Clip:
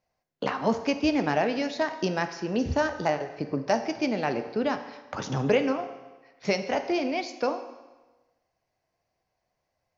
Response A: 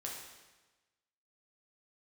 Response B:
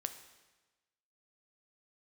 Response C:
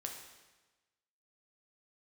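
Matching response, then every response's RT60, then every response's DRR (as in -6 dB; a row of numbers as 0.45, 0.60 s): B; 1.2, 1.2, 1.2 s; -3.0, 8.0, 1.0 dB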